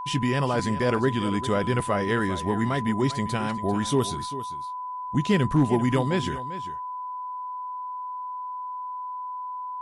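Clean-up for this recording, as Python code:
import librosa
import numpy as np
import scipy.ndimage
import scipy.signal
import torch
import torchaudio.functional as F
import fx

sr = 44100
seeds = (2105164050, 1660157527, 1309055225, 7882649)

y = fx.fix_declip(x, sr, threshold_db=-12.0)
y = fx.notch(y, sr, hz=1000.0, q=30.0)
y = fx.fix_echo_inverse(y, sr, delay_ms=395, level_db=-13.5)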